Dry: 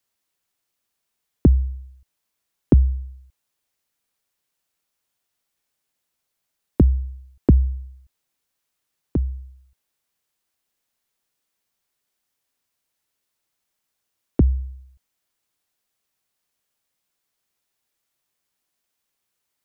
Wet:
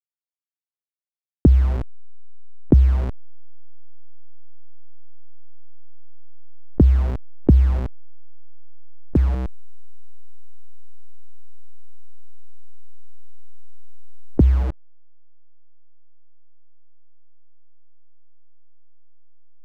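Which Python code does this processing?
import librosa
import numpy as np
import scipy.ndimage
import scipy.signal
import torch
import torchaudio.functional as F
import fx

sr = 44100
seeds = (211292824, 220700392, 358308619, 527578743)

y = fx.delta_hold(x, sr, step_db=-31.5)
y = fx.lowpass(y, sr, hz=1000.0, slope=6)
y = fx.env_flatten(y, sr, amount_pct=50)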